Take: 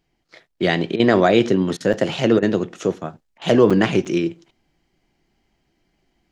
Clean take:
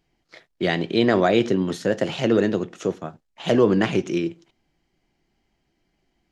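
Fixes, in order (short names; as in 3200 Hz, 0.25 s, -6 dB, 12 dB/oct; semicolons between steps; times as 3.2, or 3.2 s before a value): interpolate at 1.93/3.7/4.05, 5.7 ms; interpolate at 0.96/1.77/2.39/3.38, 34 ms; gain correction -3.5 dB, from 0.6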